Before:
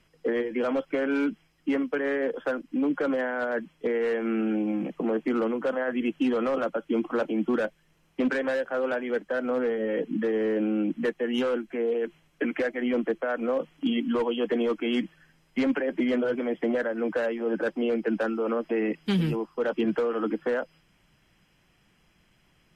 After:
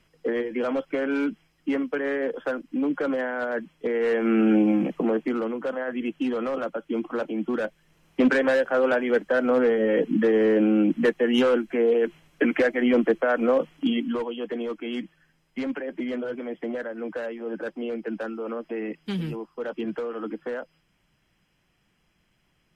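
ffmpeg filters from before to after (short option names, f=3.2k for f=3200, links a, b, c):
-af "volume=15.5dB,afade=t=in:st=3.9:d=0.67:silence=0.421697,afade=t=out:st=4.57:d=0.82:silence=0.334965,afade=t=in:st=7.55:d=0.7:silence=0.421697,afade=t=out:st=13.5:d=0.79:silence=0.298538"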